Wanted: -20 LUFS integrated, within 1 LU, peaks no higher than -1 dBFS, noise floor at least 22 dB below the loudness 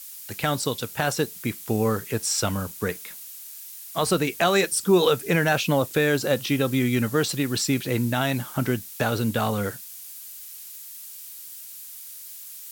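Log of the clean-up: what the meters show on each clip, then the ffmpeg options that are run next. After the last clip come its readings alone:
noise floor -41 dBFS; noise floor target -46 dBFS; loudness -24.0 LUFS; peak -7.5 dBFS; loudness target -20.0 LUFS
-> -af "afftdn=nr=6:nf=-41"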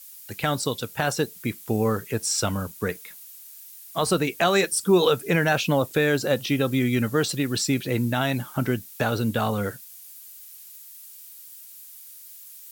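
noise floor -45 dBFS; noise floor target -46 dBFS
-> -af "afftdn=nr=6:nf=-45"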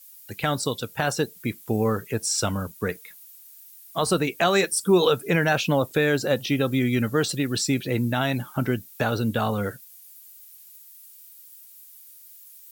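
noise floor -49 dBFS; loudness -24.5 LUFS; peak -8.0 dBFS; loudness target -20.0 LUFS
-> -af "volume=4.5dB"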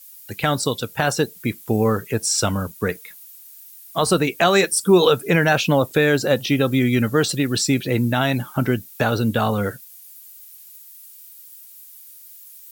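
loudness -20.0 LUFS; peak -3.5 dBFS; noise floor -44 dBFS

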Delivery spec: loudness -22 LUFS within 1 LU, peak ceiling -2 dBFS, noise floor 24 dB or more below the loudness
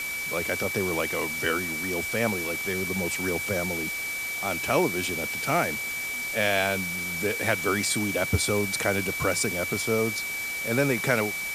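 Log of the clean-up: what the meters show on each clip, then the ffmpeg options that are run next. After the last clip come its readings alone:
steady tone 2300 Hz; tone level -30 dBFS; noise floor -32 dBFS; noise floor target -50 dBFS; loudness -26.0 LUFS; peak -9.0 dBFS; loudness target -22.0 LUFS
-> -af "bandreject=f=2.3k:w=30"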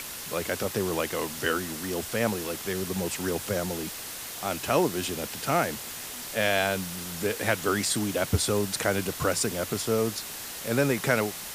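steady tone none; noise floor -38 dBFS; noise floor target -52 dBFS
-> -af "afftdn=nr=14:nf=-38"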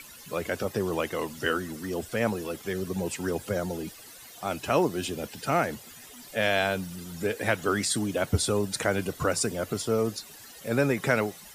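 noise floor -48 dBFS; noise floor target -53 dBFS
-> -af "afftdn=nr=6:nf=-48"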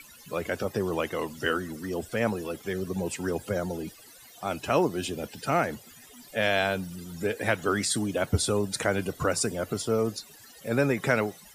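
noise floor -51 dBFS; noise floor target -53 dBFS
-> -af "afftdn=nr=6:nf=-51"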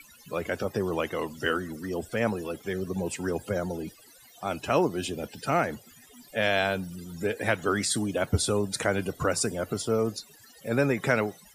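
noise floor -55 dBFS; loudness -29.0 LUFS; peak -9.5 dBFS; loudness target -22.0 LUFS
-> -af "volume=7dB"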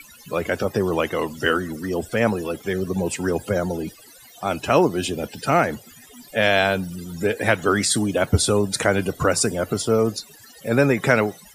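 loudness -22.0 LUFS; peak -2.5 dBFS; noise floor -48 dBFS

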